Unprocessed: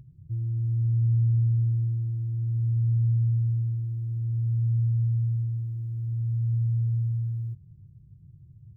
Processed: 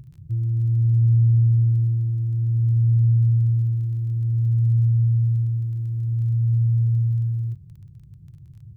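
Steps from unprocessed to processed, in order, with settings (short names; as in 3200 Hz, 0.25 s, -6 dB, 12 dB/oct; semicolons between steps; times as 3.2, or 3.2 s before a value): crackle 24/s -50 dBFS; gain +6 dB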